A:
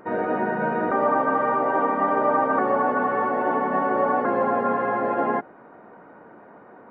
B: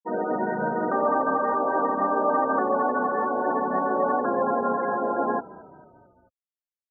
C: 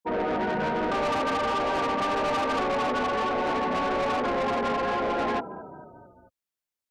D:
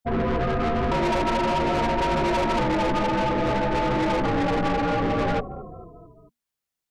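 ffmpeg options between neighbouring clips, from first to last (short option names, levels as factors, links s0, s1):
-filter_complex "[0:a]aemphasis=mode=reproduction:type=50fm,afftfilt=real='re*gte(hypot(re,im),0.0794)':imag='im*gte(hypot(re,im),0.0794)':win_size=1024:overlap=0.75,asplit=5[s0][s1][s2][s3][s4];[s1]adelay=221,afreqshift=-40,volume=0.1[s5];[s2]adelay=442,afreqshift=-80,volume=0.0562[s6];[s3]adelay=663,afreqshift=-120,volume=0.0313[s7];[s4]adelay=884,afreqshift=-160,volume=0.0176[s8];[s0][s5][s6][s7][s8]amix=inputs=5:normalize=0,volume=0.794"
-af "acontrast=30,asoftclip=type=tanh:threshold=0.0631"
-af "afreqshift=-240,volume=1.5"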